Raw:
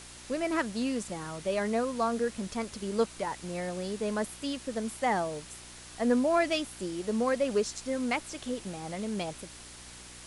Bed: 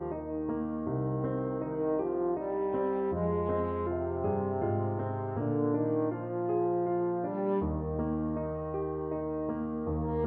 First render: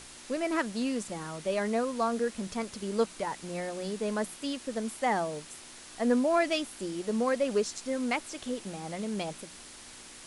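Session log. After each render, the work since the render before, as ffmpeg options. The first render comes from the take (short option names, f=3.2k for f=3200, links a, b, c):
-af "bandreject=f=60:t=h:w=4,bandreject=f=120:t=h:w=4,bandreject=f=180:t=h:w=4"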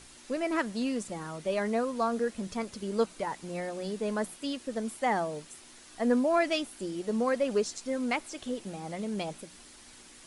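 -af "afftdn=nr=6:nf=-49"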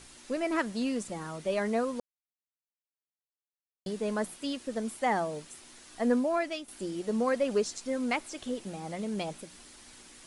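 -filter_complex "[0:a]asplit=4[a][b][c][d];[a]atrim=end=2,asetpts=PTS-STARTPTS,afade=t=out:st=1.996:d=0.004:c=hsin[e];[b]atrim=start=2:end=3.86,asetpts=PTS-STARTPTS,volume=0[f];[c]atrim=start=3.86:end=6.68,asetpts=PTS-STARTPTS,afade=t=in:d=0.004:c=hsin,afade=t=out:st=2.21:d=0.61:silence=0.281838[g];[d]atrim=start=6.68,asetpts=PTS-STARTPTS,afade=t=in:d=0.004:c=hsin:silence=0.281838[h];[e][f][g][h]concat=n=4:v=0:a=1"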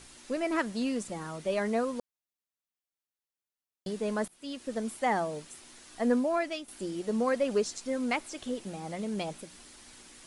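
-filter_complex "[0:a]asplit=2[a][b];[a]atrim=end=4.28,asetpts=PTS-STARTPTS,afade=t=out:st=4.276:d=0.004:c=hsin:silence=0.0841395[c];[b]atrim=start=4.28,asetpts=PTS-STARTPTS,afade=t=in:d=0.42:silence=0.0841395[d];[c][d]concat=n=2:v=0:a=1"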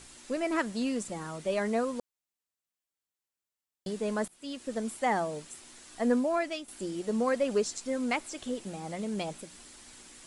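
-af "equalizer=f=7.6k:w=4.6:g=4.5"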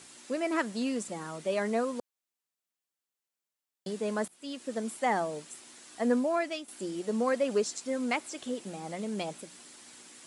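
-af "highpass=160"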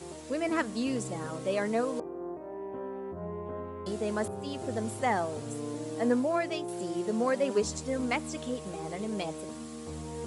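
-filter_complex "[1:a]volume=-8dB[a];[0:a][a]amix=inputs=2:normalize=0"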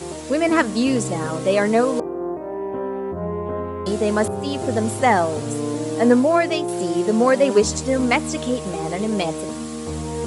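-af "volume=12dB"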